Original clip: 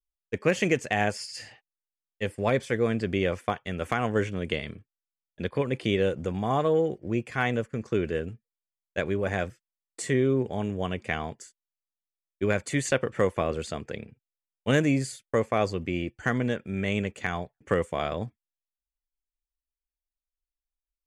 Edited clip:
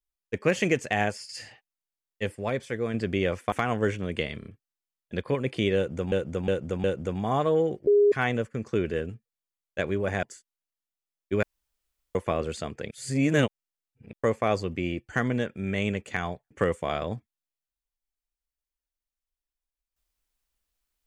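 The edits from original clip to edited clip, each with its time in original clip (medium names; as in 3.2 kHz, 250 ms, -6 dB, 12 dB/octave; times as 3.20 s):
1.01–1.29 s: fade out, to -7 dB
2.38–2.94 s: gain -4.5 dB
3.52–3.85 s: delete
4.72 s: stutter 0.03 s, 3 plays
6.03–6.39 s: loop, 4 plays
7.06–7.31 s: bleep 410 Hz -15.5 dBFS
9.42–11.33 s: delete
12.53–13.25 s: room tone
14.01–15.23 s: reverse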